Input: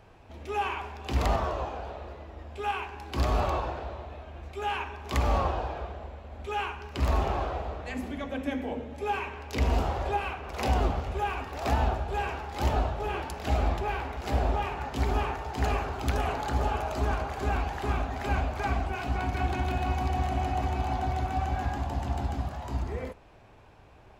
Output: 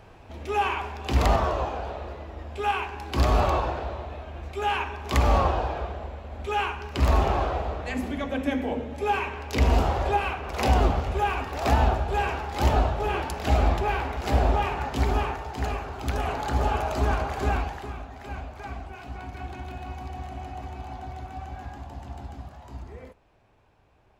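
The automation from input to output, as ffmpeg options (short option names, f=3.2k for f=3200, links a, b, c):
-af "volume=12dB,afade=t=out:st=14.79:d=1.02:silence=0.398107,afade=t=in:st=15.81:d=0.94:silence=0.446684,afade=t=out:st=17.47:d=0.44:silence=0.251189"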